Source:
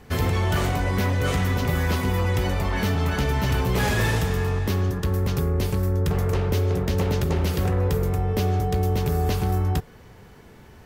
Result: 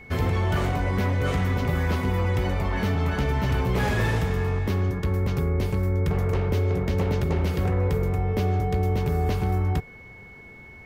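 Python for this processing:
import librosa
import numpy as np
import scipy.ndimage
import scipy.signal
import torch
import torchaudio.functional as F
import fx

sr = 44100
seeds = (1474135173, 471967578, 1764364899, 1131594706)

y = fx.high_shelf(x, sr, hz=3700.0, db=-9.5)
y = y + 10.0 ** (-44.0 / 20.0) * np.sin(2.0 * np.pi * 2200.0 * np.arange(len(y)) / sr)
y = y * librosa.db_to_amplitude(-1.0)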